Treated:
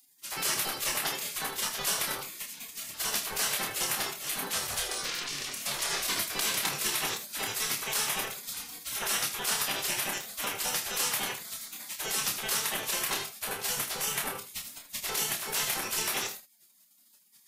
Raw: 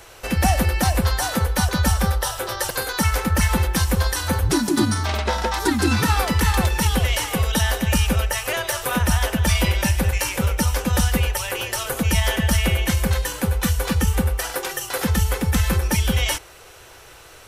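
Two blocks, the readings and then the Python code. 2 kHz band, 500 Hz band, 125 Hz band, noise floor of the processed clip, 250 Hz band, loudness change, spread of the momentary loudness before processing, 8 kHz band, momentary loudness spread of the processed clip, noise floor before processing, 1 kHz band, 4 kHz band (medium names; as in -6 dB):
-9.0 dB, -14.5 dB, -30.0 dB, -62 dBFS, -23.0 dB, -9.5 dB, 5 LU, -3.5 dB, 9 LU, -45 dBFS, -11.5 dB, -5.0 dB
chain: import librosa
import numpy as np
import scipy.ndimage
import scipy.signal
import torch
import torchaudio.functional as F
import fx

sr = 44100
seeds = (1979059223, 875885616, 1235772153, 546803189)

y = fx.spec_gate(x, sr, threshold_db=-25, keep='weak')
y = fx.room_early_taps(y, sr, ms=(28, 79), db=(-5.5, -11.5))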